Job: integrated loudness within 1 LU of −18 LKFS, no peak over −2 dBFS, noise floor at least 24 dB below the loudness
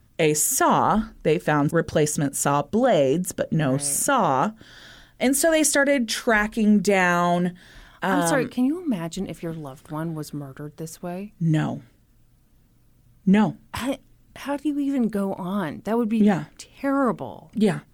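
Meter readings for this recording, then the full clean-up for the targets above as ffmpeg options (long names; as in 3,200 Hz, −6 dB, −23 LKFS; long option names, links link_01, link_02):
integrated loudness −22.5 LKFS; sample peak −8.5 dBFS; target loudness −18.0 LKFS
→ -af "volume=4.5dB"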